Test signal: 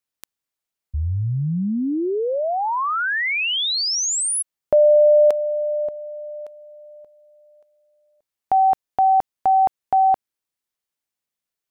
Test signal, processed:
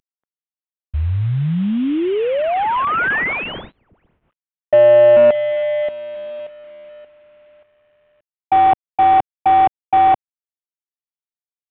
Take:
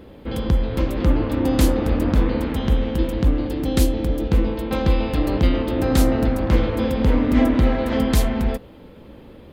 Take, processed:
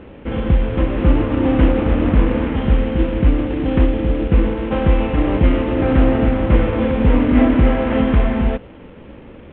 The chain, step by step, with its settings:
variable-slope delta modulation 16 kbit/s
level +4.5 dB

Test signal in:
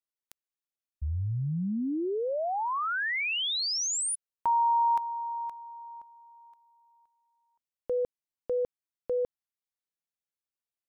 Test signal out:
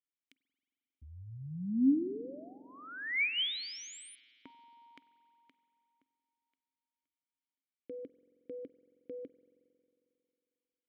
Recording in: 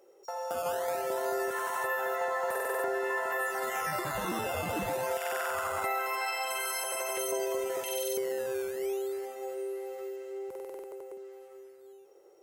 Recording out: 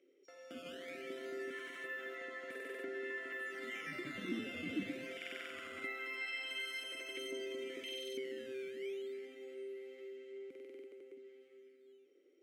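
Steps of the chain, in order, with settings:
formant filter i
spring reverb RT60 2.7 s, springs 45 ms, chirp 65 ms, DRR 14.5 dB
level +7.5 dB

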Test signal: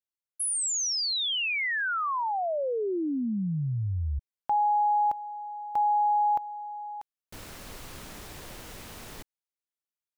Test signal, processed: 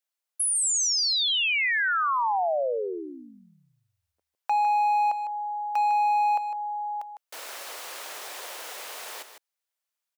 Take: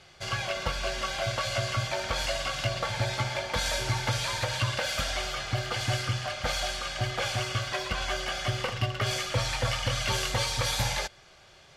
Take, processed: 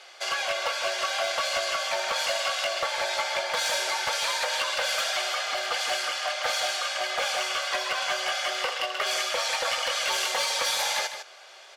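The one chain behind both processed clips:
high-pass filter 500 Hz 24 dB per octave
in parallel at +1.5 dB: downward compressor 6 to 1, threshold −35 dBFS
on the sum: gain into a clipping stage and back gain 20.5 dB
single-tap delay 154 ms −9.5 dB

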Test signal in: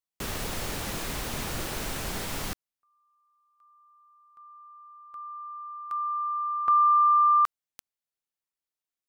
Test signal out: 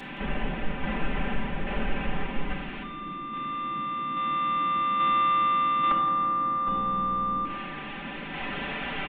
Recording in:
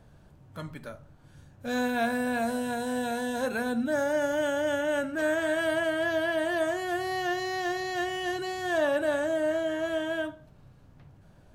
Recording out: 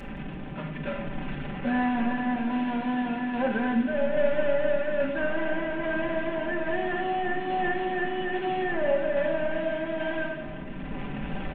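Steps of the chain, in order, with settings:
linear delta modulator 16 kbit/s, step −36.5 dBFS
camcorder AGC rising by 6.6 dB per second
parametric band 1,200 Hz −3.5 dB 0.45 octaves
comb filter 5.1 ms, depth 91%
hum removal 194.7 Hz, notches 30
shaped tremolo saw down 1.2 Hz, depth 40%
noise in a band 140–350 Hz −46 dBFS
repeating echo 168 ms, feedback 58%, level −15 dB
rectangular room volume 2,200 cubic metres, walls furnished, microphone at 2 metres

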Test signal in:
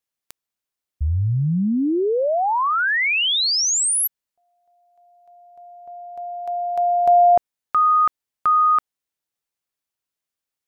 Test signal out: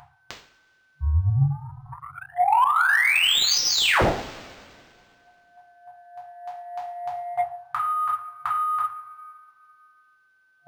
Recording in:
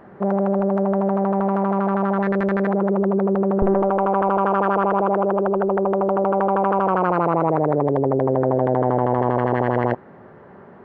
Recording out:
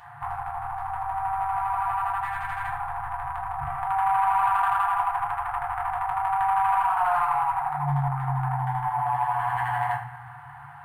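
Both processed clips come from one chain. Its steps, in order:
steady tone 510 Hz −25 dBFS
high-pass filter 100 Hz
downward compressor 3 to 1, threshold −23 dBFS
coupled-rooms reverb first 0.46 s, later 2.3 s, from −21 dB, DRR −6.5 dB
soft clipping −9.5 dBFS
brick-wall band-stop 140–710 Hz
linearly interpolated sample-rate reduction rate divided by 4×

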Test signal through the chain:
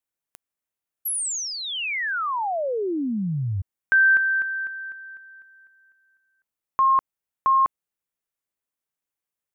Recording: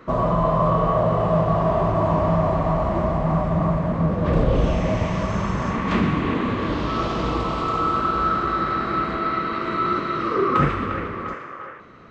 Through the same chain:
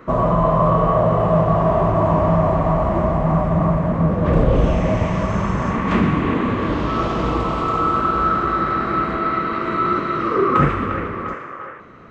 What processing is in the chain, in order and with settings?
parametric band 4,400 Hz −6.5 dB 1.1 octaves
level +3.5 dB

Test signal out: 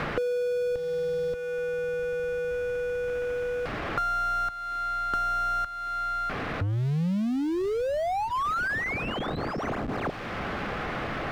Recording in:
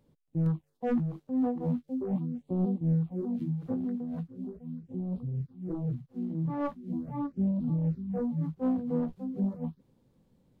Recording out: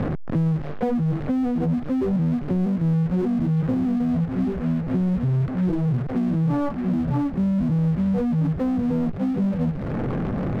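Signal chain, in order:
linear delta modulator 32 kbit/s, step −44 dBFS
low-pass filter 1,600 Hz 12 dB per octave
low-shelf EQ 150 Hz +11 dB
notch filter 940 Hz, Q 8.1
in parallel at +2.5 dB: compressor whose output falls as the input rises −31 dBFS
on the sum: power curve on the samples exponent 0.7
multiband upward and downward compressor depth 100%
level −2.5 dB

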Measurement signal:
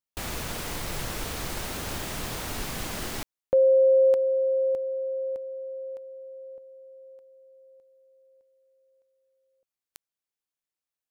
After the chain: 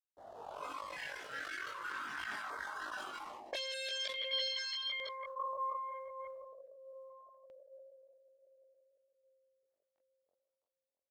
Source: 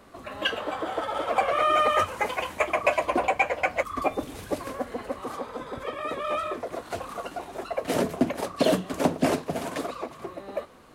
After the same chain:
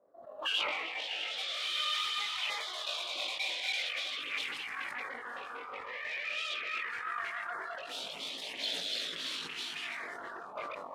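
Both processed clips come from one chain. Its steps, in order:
feedback delay that plays each chunk backwards 169 ms, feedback 43%, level −0.5 dB
noise reduction from a noise print of the clip's start 13 dB
delay that swaps between a low-pass and a high-pass 329 ms, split 1,000 Hz, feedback 60%, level −12 dB
soft clipping −19 dBFS
harmonic generator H 8 −14 dB, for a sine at −19 dBFS
envelope filter 550–3,500 Hz, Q 4.3, up, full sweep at −23 dBFS
multi-voice chorus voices 2, 0.23 Hz, delay 20 ms, depth 2 ms
auto-filter notch saw down 0.4 Hz 450–2,900 Hz
floating-point word with a short mantissa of 6 bits
level that may fall only so fast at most 29 dB per second
level +8 dB

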